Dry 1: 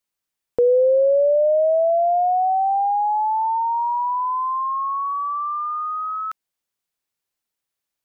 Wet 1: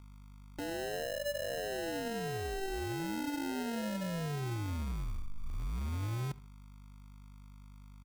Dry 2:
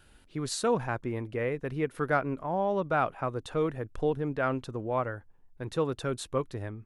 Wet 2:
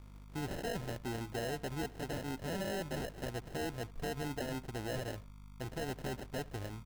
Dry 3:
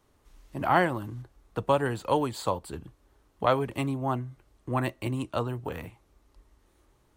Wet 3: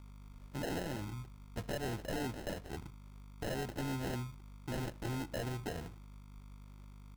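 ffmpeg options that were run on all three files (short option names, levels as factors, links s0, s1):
-filter_complex "[0:a]acompressor=threshold=0.0562:ratio=4,aeval=exprs='val(0)+0.00501*(sin(2*PI*50*n/s)+sin(2*PI*2*50*n/s)/2+sin(2*PI*3*50*n/s)/3+sin(2*PI*4*50*n/s)/4+sin(2*PI*5*50*n/s)/5)':c=same,acrusher=samples=38:mix=1:aa=0.000001,aeval=exprs='0.0447*(abs(mod(val(0)/0.0447+3,4)-2)-1)':c=same,asplit=2[s0][s1];[s1]adelay=74,lowpass=f=3900:p=1,volume=0.0841,asplit=2[s2][s3];[s3]adelay=74,lowpass=f=3900:p=1,volume=0.34[s4];[s0][s2][s4]amix=inputs=3:normalize=0,volume=0.562"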